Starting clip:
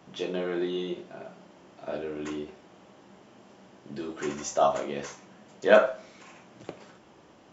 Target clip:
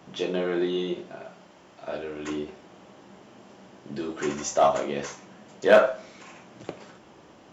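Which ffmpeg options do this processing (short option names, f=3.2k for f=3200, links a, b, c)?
-filter_complex "[0:a]asettb=1/sr,asplit=3[a][b][c];[a]atrim=end=1.154[d];[b]atrim=start=1.15:end=2.28,asetpts=PTS-STARTPTS,afade=t=in:d=0.004:c=qsin,afade=t=out:st=1.126:d=0.004:c=qsin,equalizer=f=240:w=0.47:g=-5.5[e];[c]atrim=start=2.276[f];[d][e]acrossfade=d=0.004:c1=hsin:c2=qsin[g];[g][f]acrossfade=d=0.004:c1=qsin:c2=hsin,asplit=2[h][i];[i]asoftclip=type=hard:threshold=-20dB,volume=-5.5dB[j];[h][j]amix=inputs=2:normalize=0"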